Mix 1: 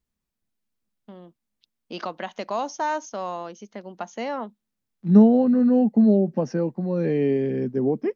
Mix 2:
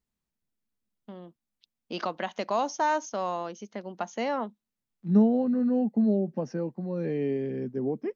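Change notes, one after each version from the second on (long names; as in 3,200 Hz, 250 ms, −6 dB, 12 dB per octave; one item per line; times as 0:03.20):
second voice −7.0 dB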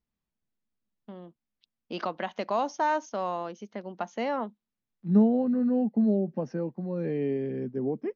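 master: add high-frequency loss of the air 110 metres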